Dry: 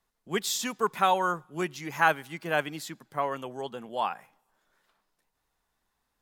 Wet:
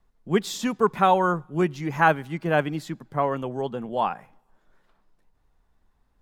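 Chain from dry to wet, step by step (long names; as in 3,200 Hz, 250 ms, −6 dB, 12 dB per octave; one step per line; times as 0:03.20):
spectral tilt −3 dB per octave
level +4 dB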